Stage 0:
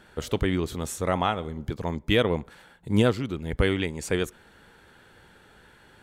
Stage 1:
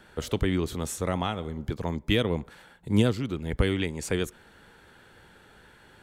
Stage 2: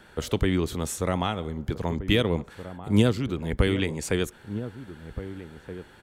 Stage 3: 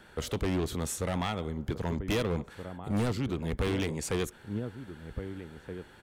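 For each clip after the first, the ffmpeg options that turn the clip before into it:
-filter_complex "[0:a]acrossover=split=340|3000[a][b][c];[b]acompressor=threshold=-30dB:ratio=2.5[d];[a][d][c]amix=inputs=3:normalize=0"
-filter_complex "[0:a]asplit=2[a][b];[b]adelay=1574,volume=-12dB,highshelf=f=4k:g=-35.4[c];[a][c]amix=inputs=2:normalize=0,volume=2dB"
-af "volume=22.5dB,asoftclip=hard,volume=-22.5dB,volume=-2.5dB"

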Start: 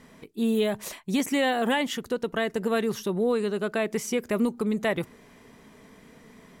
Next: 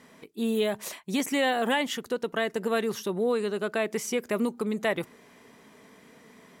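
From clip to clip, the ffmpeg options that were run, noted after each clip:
-af "highpass=f=250:p=1"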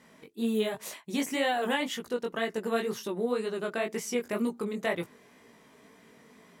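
-af "flanger=delay=17:depth=4.7:speed=2"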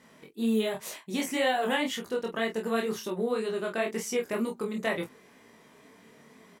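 -filter_complex "[0:a]asplit=2[a][b];[b]adelay=27,volume=-5dB[c];[a][c]amix=inputs=2:normalize=0"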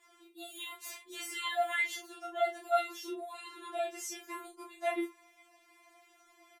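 -filter_complex "[0:a]asplit=2[a][b];[b]aecho=0:1:16|47:0.376|0.188[c];[a][c]amix=inputs=2:normalize=0,afftfilt=real='re*4*eq(mod(b,16),0)':imag='im*4*eq(mod(b,16),0)':win_size=2048:overlap=0.75,volume=-2.5dB"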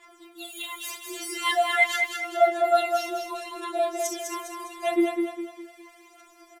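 -filter_complex "[0:a]aphaser=in_gain=1:out_gain=1:delay=3.1:decay=0.6:speed=0.39:type=sinusoidal,asplit=2[a][b];[b]aecho=0:1:203|406|609|812|1015:0.562|0.231|0.0945|0.0388|0.0159[c];[a][c]amix=inputs=2:normalize=0,volume=6dB"

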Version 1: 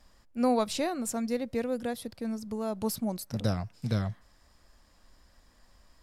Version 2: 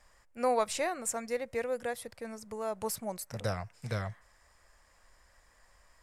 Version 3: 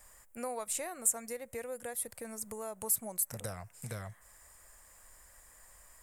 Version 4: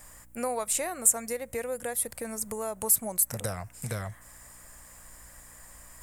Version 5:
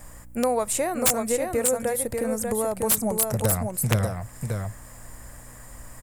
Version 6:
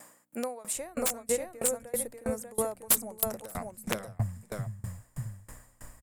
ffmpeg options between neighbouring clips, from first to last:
-af "equalizer=f=250:t=o:w=1:g=-9,equalizer=f=500:t=o:w=1:g=5,equalizer=f=1k:t=o:w=1:g=4,equalizer=f=2k:t=o:w=1:g=9,equalizer=f=4k:t=o:w=1:g=-4,equalizer=f=8k:t=o:w=1:g=8,volume=-5dB"
-af "acompressor=threshold=-44dB:ratio=2.5,aexciter=amount=4.9:drive=7:freq=7.2k,volume=1.5dB"
-af "areverse,acompressor=mode=upward:threshold=-55dB:ratio=2.5,areverse,aeval=exprs='val(0)+0.000501*(sin(2*PI*60*n/s)+sin(2*PI*2*60*n/s)/2+sin(2*PI*3*60*n/s)/3+sin(2*PI*4*60*n/s)/4+sin(2*PI*5*60*n/s)/5)':c=same,volume=7.5dB"
-af "tiltshelf=f=840:g=5,aecho=1:1:591:0.596,aeval=exprs='(mod(7.5*val(0)+1,2)-1)/7.5':c=same,volume=6dB"
-filter_complex "[0:a]acrossover=split=190[a][b];[a]adelay=750[c];[c][b]amix=inputs=2:normalize=0,aeval=exprs='val(0)*pow(10,-26*if(lt(mod(3.1*n/s,1),2*abs(3.1)/1000),1-mod(3.1*n/s,1)/(2*abs(3.1)/1000),(mod(3.1*n/s,1)-2*abs(3.1)/1000)/(1-2*abs(3.1)/1000))/20)':c=same"

